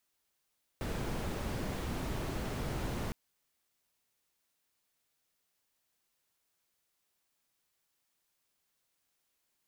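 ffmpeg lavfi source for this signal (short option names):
-f lavfi -i "anoisesrc=c=brown:a=0.0741:d=2.31:r=44100:seed=1"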